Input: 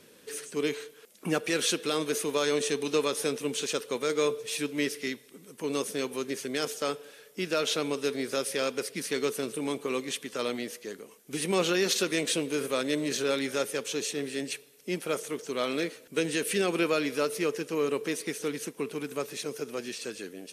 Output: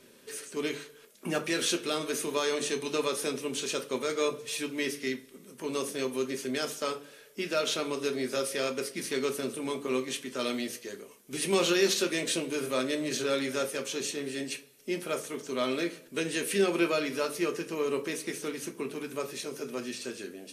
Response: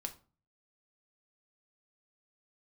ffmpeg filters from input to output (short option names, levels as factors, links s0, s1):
-filter_complex "[1:a]atrim=start_sample=2205,asetrate=52920,aresample=44100[s0];[0:a][s0]afir=irnorm=-1:irlink=0,asplit=3[s1][s2][s3];[s1]afade=t=out:st=10.4:d=0.02[s4];[s2]adynamicequalizer=threshold=0.00631:dfrequency=2200:dqfactor=0.7:tfrequency=2200:tqfactor=0.7:attack=5:release=100:ratio=0.375:range=2:mode=boostabove:tftype=highshelf,afade=t=in:st=10.4:d=0.02,afade=t=out:st=11.87:d=0.02[s5];[s3]afade=t=in:st=11.87:d=0.02[s6];[s4][s5][s6]amix=inputs=3:normalize=0,volume=1.33"